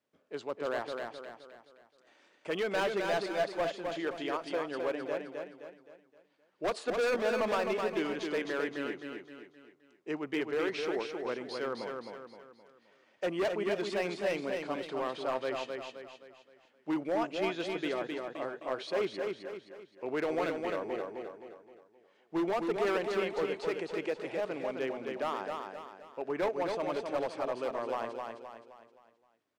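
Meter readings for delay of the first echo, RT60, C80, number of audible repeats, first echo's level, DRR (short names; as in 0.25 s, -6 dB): 0.261 s, none, none, 5, -4.5 dB, none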